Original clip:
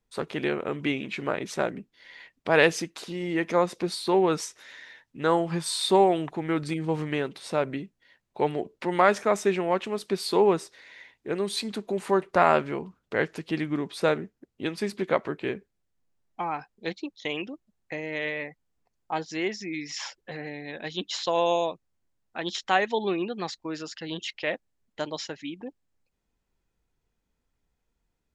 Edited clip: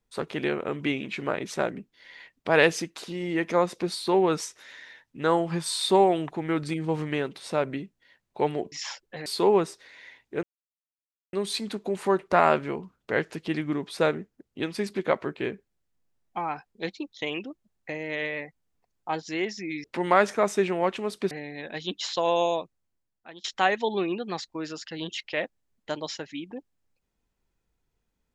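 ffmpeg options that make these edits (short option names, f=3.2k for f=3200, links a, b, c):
-filter_complex "[0:a]asplit=7[a][b][c][d][e][f][g];[a]atrim=end=8.722[h];[b]atrim=start=19.868:end=20.412[i];[c]atrim=start=10.188:end=11.36,asetpts=PTS-STARTPTS,afade=t=out:st=1.168:d=0.004:c=hsin,apad=pad_dur=0.9[j];[d]atrim=start=11.36:end=19.872,asetpts=PTS-STARTPTS,afade=t=in:d=0.004:c=hsin[k];[e]atrim=start=8.718:end=10.192[l];[f]atrim=start=20.408:end=22.54,asetpts=PTS-STARTPTS,afade=t=out:st=1.292:d=0.84:silence=0.0944061[m];[g]atrim=start=22.54,asetpts=PTS-STARTPTS,afade=t=in:d=0.004:c=hsin:silence=0.0944061[n];[h][i]acrossfade=d=0.004:c1=hsin:c2=hsin[o];[j][k]concat=n=2:v=0:a=1[p];[o][p]acrossfade=d=0.004:c1=hsin:c2=hsin[q];[q][l]acrossfade=d=0.004:c1=hsin:c2=hsin[r];[m][n]concat=n=2:v=0:a=1[s];[r][s]acrossfade=d=0.004:c1=hsin:c2=hsin"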